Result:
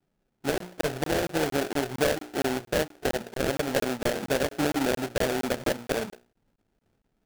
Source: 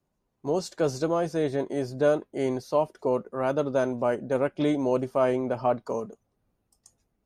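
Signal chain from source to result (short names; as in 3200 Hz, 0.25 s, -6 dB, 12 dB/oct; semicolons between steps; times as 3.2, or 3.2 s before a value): Wiener smoothing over 41 samples; LPF 3500 Hz; bell 65 Hz -10 dB 2.3 oct; notches 60/120/180/240/300/360/420/480/540 Hz; in parallel at +2.5 dB: limiter -19 dBFS, peak gain reduction 7 dB; on the sum: compressor 4:1, threshold -23 dBFS, peak gain reduction 8.5 dB; sample-rate reducer 1100 Hz, jitter 20%; crackling interface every 0.23 s, samples 1024, zero, from 0.58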